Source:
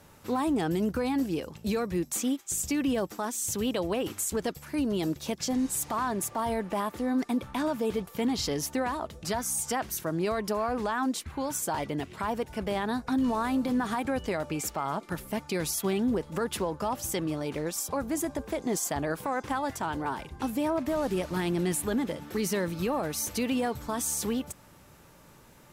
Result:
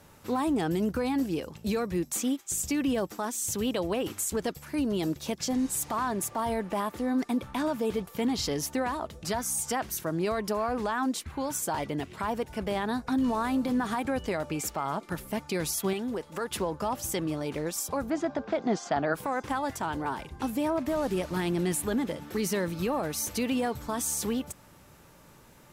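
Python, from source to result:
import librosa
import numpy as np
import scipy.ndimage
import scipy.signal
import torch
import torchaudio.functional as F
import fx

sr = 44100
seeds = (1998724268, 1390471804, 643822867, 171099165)

y = fx.low_shelf(x, sr, hz=300.0, db=-11.0, at=(15.93, 16.51))
y = fx.cabinet(y, sr, low_hz=120.0, low_slope=12, high_hz=5100.0, hz=(210.0, 710.0, 1400.0), db=(5, 8, 8), at=(18.09, 19.13), fade=0.02)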